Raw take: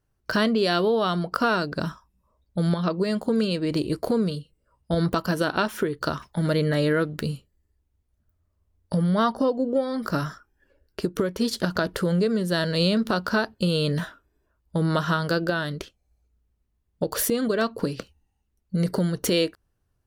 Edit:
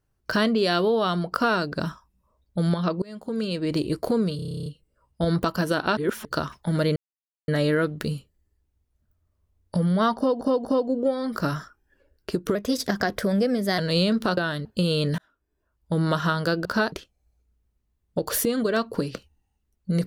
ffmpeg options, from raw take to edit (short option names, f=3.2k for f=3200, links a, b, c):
-filter_complex "[0:a]asplit=24[a][b][c][d][e][f][g][h][i][j][k][l][m][n][o][p][q][r][s][t][u][v][w][x];[a]atrim=end=3.02,asetpts=PTS-STARTPTS,afade=t=out:st=3.016:d=0.004:c=hsin:silence=0.0668344[y];[b]atrim=start=3.02:end=4.392,asetpts=PTS-STARTPTS,afade=t=in:d=0.68:silence=0.0668344[z];[c]atrim=start=4.358:end=4.392[aa];[d]atrim=start=4.358:end=4.392[ab];[e]atrim=start=4.358:end=4.392[ac];[f]atrim=start=4.358:end=4.392[ad];[g]atrim=start=4.358:end=4.392[ae];[h]atrim=start=4.358:end=4.392[af];[i]atrim=start=4.358:end=4.392[ag];[j]atrim=start=4.358:end=4.392[ah];[k]atrim=start=4.358:end=4.392[ai];[l]atrim=start=4.358:end=5.672[aj];[m]atrim=start=5.668:end=5.952,asetpts=PTS-STARTPTS,areverse[ak];[n]atrim=start=5.948:end=6.66,asetpts=PTS-STARTPTS,afade=t=out:st=0.708:d=0.004:c=hsin,apad=pad_dur=0.52[al];[o]atrim=start=6.66:end=9.592,asetpts=PTS-STARTPTS,afade=t=in:d=0.004:c=hsin[am];[p]atrim=start=9.348:end=9.592[an];[q]atrim=start=9.348:end=11.254[ao];[r]atrim=start=11.25:end=12.63,asetpts=PTS-STARTPTS,asetrate=49392,aresample=44100,atrim=end_sample=54337,asetpts=PTS-STARTPTS[ap];[s]atrim=start=12.626:end=13.222[aq];[t]atrim=start=15.488:end=15.772[ar];[u]atrim=start=13.488:end=14.02,asetpts=PTS-STARTPTS,afade=t=out:st=0.528:d=0.004:c=hsin[as];[v]atrim=start=14.02:end=15.492,asetpts=PTS-STARTPTS,afade=t=in:d=0.76[at];[w]atrim=start=13.218:end=13.492[au];[x]atrim=start=15.768[av];[y][z]concat=n=2:v=0:a=1[aw];[aw][aa]acrossfade=d=0.004:c1=hsin:c2=hsin[ax];[ax][ab]acrossfade=d=0.004:c1=hsin:c2=hsin[ay];[ay][ac]acrossfade=d=0.004:c1=hsin:c2=hsin[az];[az][ad]acrossfade=d=0.004:c1=hsin:c2=hsin[ba];[ba][ae]acrossfade=d=0.004:c1=hsin:c2=hsin[bb];[bb][af]acrossfade=d=0.004:c1=hsin:c2=hsin[bc];[bc][ag]acrossfade=d=0.004:c1=hsin:c2=hsin[bd];[bd][ah]acrossfade=d=0.004:c1=hsin:c2=hsin[be];[be][ai]acrossfade=d=0.004:c1=hsin:c2=hsin[bf];[bf][aj]acrossfade=d=0.004:c1=hsin:c2=hsin[bg];[bg][ak]acrossfade=d=0.004:c1=hsin:c2=hsin[bh];[al][am]concat=n=2:v=0:a=1[bi];[bh][bi]acrossfade=d=0.004:c1=hsin:c2=hsin[bj];[bj][an]acrossfade=d=0.004:c1=hsin:c2=hsin[bk];[bk][ao]acrossfade=d=0.004:c1=hsin:c2=hsin[bl];[bl][ap]acrossfade=d=0.004:c1=hsin:c2=hsin[bm];[bm][aq]acrossfade=d=0.004:c1=hsin:c2=hsin[bn];[bn][ar]acrossfade=d=0.004:c1=hsin:c2=hsin[bo];[as][at]concat=n=2:v=0:a=1[bp];[bo][bp]acrossfade=d=0.004:c1=hsin:c2=hsin[bq];[bq][au]acrossfade=d=0.004:c1=hsin:c2=hsin[br];[br][av]acrossfade=d=0.004:c1=hsin:c2=hsin"